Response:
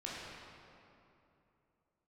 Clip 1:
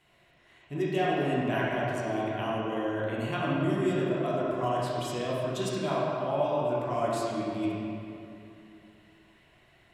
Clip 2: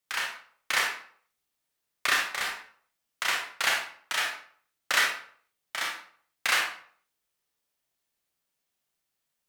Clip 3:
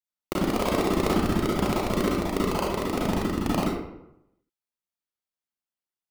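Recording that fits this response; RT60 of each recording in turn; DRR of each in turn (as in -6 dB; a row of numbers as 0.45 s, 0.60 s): 1; 2.8 s, 0.55 s, 0.80 s; -6.5 dB, -1.0 dB, -6.0 dB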